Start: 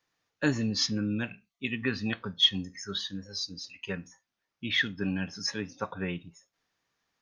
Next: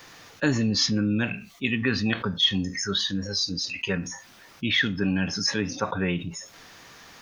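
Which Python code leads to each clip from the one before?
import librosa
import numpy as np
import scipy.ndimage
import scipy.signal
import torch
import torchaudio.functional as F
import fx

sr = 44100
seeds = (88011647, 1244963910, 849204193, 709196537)

y = fx.env_flatten(x, sr, amount_pct=50)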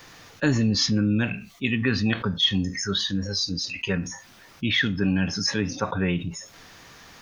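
y = fx.low_shelf(x, sr, hz=140.0, db=6.5)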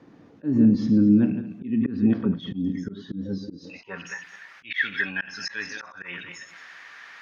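y = fx.reverse_delay_fb(x, sr, ms=109, feedback_pct=43, wet_db=-10.5)
y = fx.filter_sweep_bandpass(y, sr, from_hz=260.0, to_hz=1800.0, start_s=3.45, end_s=4.13, q=2.2)
y = fx.auto_swell(y, sr, attack_ms=193.0)
y = F.gain(torch.from_numpy(y), 8.5).numpy()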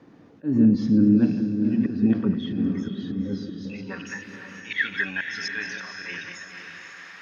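y = fx.echo_diffused(x, sr, ms=516, feedback_pct=42, wet_db=-7)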